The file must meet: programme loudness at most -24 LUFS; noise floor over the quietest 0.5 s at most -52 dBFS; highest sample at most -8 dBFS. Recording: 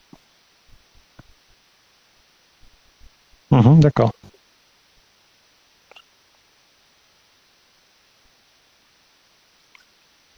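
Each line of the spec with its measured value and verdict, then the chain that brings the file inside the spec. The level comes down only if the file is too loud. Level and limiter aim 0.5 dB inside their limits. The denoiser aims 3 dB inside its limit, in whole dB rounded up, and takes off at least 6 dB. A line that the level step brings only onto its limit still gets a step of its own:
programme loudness -15.0 LUFS: fail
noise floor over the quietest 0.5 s -58 dBFS: pass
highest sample -3.5 dBFS: fail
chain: trim -9.5 dB

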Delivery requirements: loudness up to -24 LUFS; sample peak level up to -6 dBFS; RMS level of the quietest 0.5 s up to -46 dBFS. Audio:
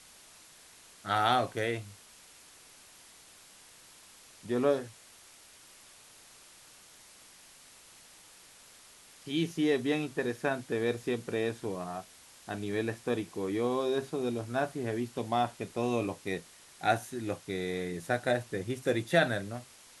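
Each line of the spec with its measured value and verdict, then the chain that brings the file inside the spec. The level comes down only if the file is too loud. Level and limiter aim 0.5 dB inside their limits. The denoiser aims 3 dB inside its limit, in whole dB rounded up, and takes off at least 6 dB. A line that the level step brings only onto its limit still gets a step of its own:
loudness -32.5 LUFS: pass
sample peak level -11.5 dBFS: pass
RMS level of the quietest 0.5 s -56 dBFS: pass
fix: none needed

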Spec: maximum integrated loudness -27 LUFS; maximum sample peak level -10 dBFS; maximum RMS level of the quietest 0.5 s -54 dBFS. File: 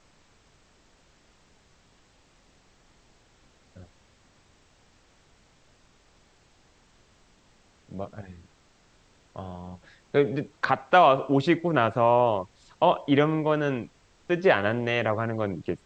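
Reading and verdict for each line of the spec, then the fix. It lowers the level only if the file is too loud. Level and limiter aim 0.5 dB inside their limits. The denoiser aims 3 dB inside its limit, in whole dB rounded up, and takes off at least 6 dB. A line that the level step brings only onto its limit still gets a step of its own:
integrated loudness -24.0 LUFS: fail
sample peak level -6.0 dBFS: fail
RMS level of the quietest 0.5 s -61 dBFS: pass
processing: trim -3.5 dB; peak limiter -10.5 dBFS

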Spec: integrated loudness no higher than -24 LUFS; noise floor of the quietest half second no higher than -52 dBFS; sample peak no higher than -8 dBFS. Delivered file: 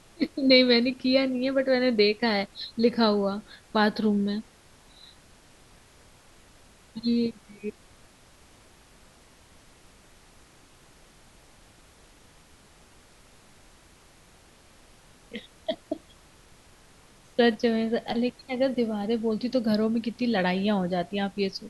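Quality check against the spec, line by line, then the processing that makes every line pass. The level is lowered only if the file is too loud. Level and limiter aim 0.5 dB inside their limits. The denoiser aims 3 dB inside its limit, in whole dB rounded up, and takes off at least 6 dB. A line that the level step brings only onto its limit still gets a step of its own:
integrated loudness -25.5 LUFS: pass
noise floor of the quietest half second -55 dBFS: pass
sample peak -6.5 dBFS: fail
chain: peak limiter -8.5 dBFS

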